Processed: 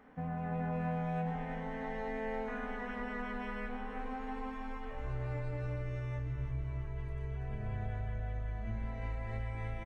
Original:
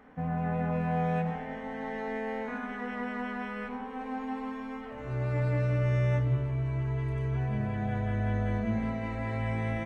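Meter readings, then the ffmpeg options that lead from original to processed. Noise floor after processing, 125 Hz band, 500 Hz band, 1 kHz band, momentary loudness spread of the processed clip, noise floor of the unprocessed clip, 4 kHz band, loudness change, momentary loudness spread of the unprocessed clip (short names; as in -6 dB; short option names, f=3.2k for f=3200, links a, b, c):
-42 dBFS, -9.0 dB, -7.0 dB, -5.5 dB, 6 LU, -40 dBFS, n/a, -7.5 dB, 10 LU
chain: -filter_complex "[0:a]asubboost=boost=12:cutoff=52,acompressor=threshold=-30dB:ratio=6,asplit=2[a][b];[b]aecho=0:1:332|664|996|1328|1660:0.398|0.183|0.0842|0.0388|0.0178[c];[a][c]amix=inputs=2:normalize=0,volume=-4dB"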